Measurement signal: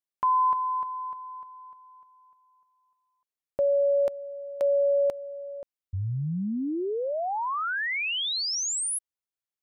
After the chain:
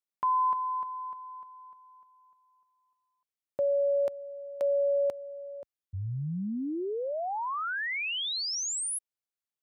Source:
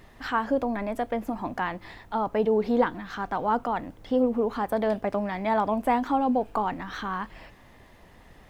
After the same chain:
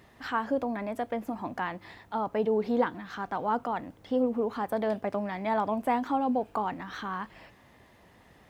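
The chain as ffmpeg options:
ffmpeg -i in.wav -af "highpass=75,volume=-3.5dB" out.wav

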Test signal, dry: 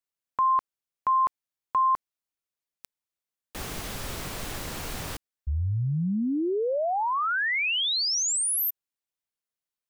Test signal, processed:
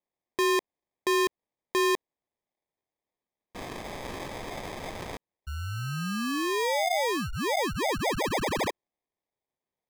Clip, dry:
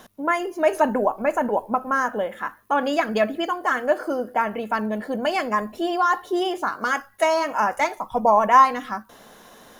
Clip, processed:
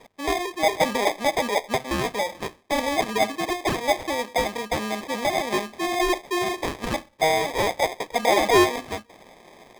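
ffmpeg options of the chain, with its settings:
ffmpeg -i in.wav -filter_complex "[0:a]acrusher=samples=31:mix=1:aa=0.000001,asplit=2[link_01][link_02];[link_02]highpass=frequency=720:poles=1,volume=9dB,asoftclip=type=tanh:threshold=-5dB[link_03];[link_01][link_03]amix=inputs=2:normalize=0,lowpass=frequency=6200:poles=1,volume=-6dB,volume=-2.5dB" out.wav

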